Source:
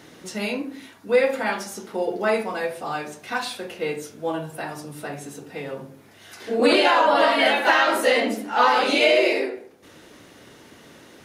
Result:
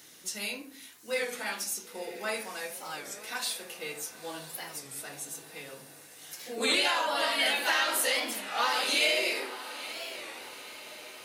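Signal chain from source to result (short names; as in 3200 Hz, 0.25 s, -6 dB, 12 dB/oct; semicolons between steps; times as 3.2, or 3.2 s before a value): pre-emphasis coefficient 0.9; diffused feedback echo 0.967 s, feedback 50%, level -13 dB; record warp 33 1/3 rpm, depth 160 cents; gain +3.5 dB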